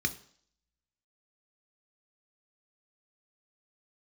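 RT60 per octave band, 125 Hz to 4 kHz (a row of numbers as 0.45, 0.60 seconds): 0.50, 0.55, 0.55, 0.55, 0.55, 0.65 seconds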